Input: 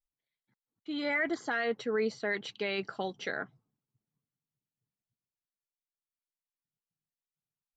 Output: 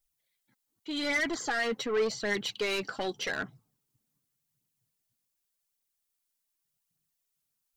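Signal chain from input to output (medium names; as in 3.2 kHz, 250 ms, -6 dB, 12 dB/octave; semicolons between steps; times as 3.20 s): treble shelf 4.7 kHz +11 dB; saturation -30.5 dBFS, distortion -10 dB; phaser 0.86 Hz, delay 4.1 ms, feedback 39%; trim +4.5 dB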